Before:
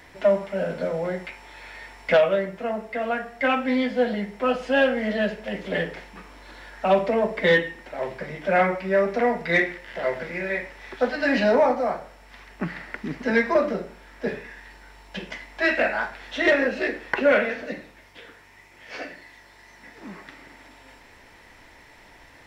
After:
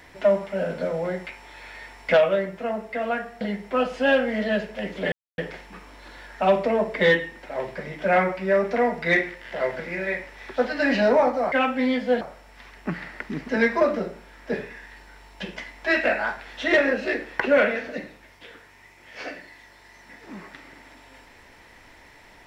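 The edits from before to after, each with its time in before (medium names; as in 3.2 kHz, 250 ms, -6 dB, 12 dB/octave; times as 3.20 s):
3.41–4.10 s: move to 11.95 s
5.81 s: insert silence 0.26 s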